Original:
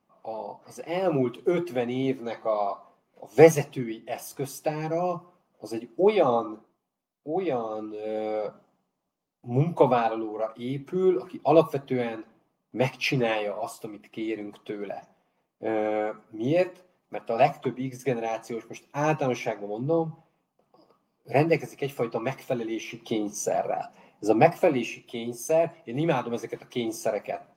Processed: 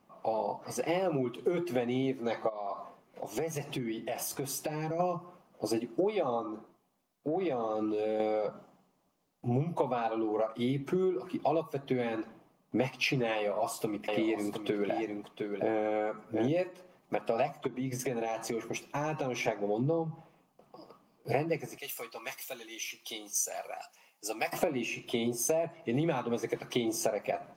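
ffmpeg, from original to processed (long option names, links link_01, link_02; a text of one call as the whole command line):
ffmpeg -i in.wav -filter_complex "[0:a]asplit=3[link_01][link_02][link_03];[link_01]afade=type=out:start_time=2.48:duration=0.02[link_04];[link_02]acompressor=threshold=-38dB:ratio=8:attack=3.2:release=140:knee=1:detection=peak,afade=type=in:start_time=2.48:duration=0.02,afade=type=out:start_time=4.99:duration=0.02[link_05];[link_03]afade=type=in:start_time=4.99:duration=0.02[link_06];[link_04][link_05][link_06]amix=inputs=3:normalize=0,asettb=1/sr,asplit=3[link_07][link_08][link_09];[link_07]atrim=end=6.494[link_10];[link_08]atrim=start=6.49:end=8.2,asetpts=PTS-STARTPTS,afade=type=in:duration=0.004:curve=qsin,afade=type=out:start_time=1.706:duration=0.004:curve=qsin,acompressor=threshold=-34dB:ratio=6:attack=3.2:release=140:knee=1:detection=peak[link_11];[link_09]atrim=start=8.196[link_12];[link_10][link_11]acrossfade=duration=0.004:curve1=hsin:curve2=qsin[link_13];[link_13][link_12]acrossfade=duration=0.004:curve1=qsin:curve2=hsin,asettb=1/sr,asplit=3[link_14][link_15][link_16];[link_14]atrim=end=13.374[link_17];[link_15]atrim=start=13.37:end=16.48,asetpts=PTS-STARTPTS,afade=type=in:duration=0.004:curve=qsin,afade=type=out:start_time=3.106:duration=0.004:curve=qsin,aecho=1:1:710:0.355,atrim=end_sample=137151[link_18];[link_16]atrim=start=16.476[link_19];[link_17][link_18]acrossfade=duration=0.004:curve1=hsin:curve2=qsin[link_20];[link_20][link_19]acrossfade=duration=0.004:curve1=qsin:curve2=hsin,asplit=3[link_21][link_22][link_23];[link_21]afade=type=out:start_time=17.66:duration=0.02[link_24];[link_22]acompressor=threshold=-37dB:ratio=5:attack=3.2:release=140:knee=1:detection=peak,afade=type=in:start_time=17.66:duration=0.02,afade=type=out:start_time=19.47:duration=0.02[link_25];[link_23]afade=type=in:start_time=19.47:duration=0.02[link_26];[link_24][link_25][link_26]amix=inputs=3:normalize=0,asettb=1/sr,asplit=3[link_27][link_28][link_29];[link_27]atrim=end=21.784[link_30];[link_28]atrim=start=21.78:end=24.53,asetpts=PTS-STARTPTS,afade=type=in:duration=0.004:curve=qsin,afade=type=out:start_time=2.746:duration=0.004:curve=qsin,aderivative[link_31];[link_29]atrim=start=24.526[link_32];[link_30][link_31]acrossfade=duration=0.004:curve1=hsin:curve2=qsin[link_33];[link_33][link_32]acrossfade=duration=0.004:curve1=qsin:curve2=hsin,acompressor=threshold=-34dB:ratio=12,volume=7dB" out.wav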